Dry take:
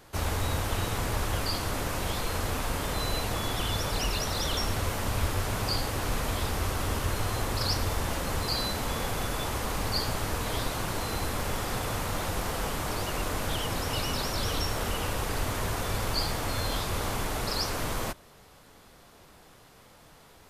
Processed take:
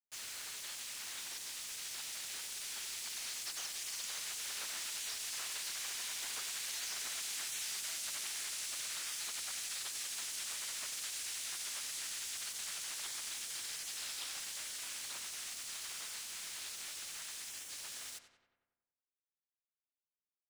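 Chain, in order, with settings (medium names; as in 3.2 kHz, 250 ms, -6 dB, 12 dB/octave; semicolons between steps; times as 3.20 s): Doppler pass-by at 7.83 s, 40 m/s, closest 20 m; spectral gate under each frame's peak -20 dB weak; Chebyshev band-pass 100–7600 Hz, order 2; tilt EQ +4 dB/octave; compression 16:1, threshold -48 dBFS, peak gain reduction 19.5 dB; bit crusher 10-bit; filtered feedback delay 93 ms, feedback 61%, low-pass 3 kHz, level -9 dB; trim +10 dB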